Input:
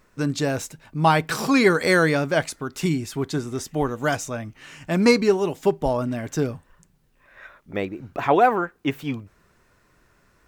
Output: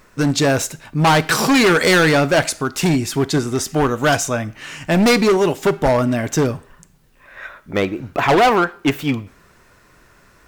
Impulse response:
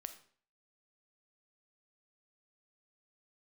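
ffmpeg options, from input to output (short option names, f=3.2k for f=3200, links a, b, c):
-filter_complex "[0:a]asoftclip=type=hard:threshold=-19.5dB,asplit=2[a][b];[1:a]atrim=start_sample=2205,lowshelf=f=360:g=-11[c];[b][c]afir=irnorm=-1:irlink=0,volume=0dB[d];[a][d]amix=inputs=2:normalize=0,volume=6.5dB"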